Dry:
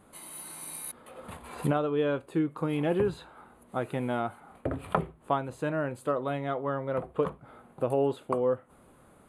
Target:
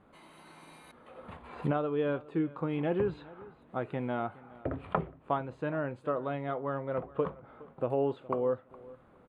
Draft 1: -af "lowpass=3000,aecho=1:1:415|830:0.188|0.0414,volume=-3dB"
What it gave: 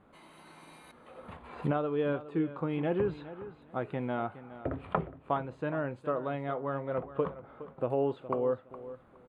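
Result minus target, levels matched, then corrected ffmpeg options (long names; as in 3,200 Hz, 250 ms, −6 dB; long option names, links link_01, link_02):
echo-to-direct +6 dB
-af "lowpass=3000,aecho=1:1:415|830:0.0944|0.0208,volume=-3dB"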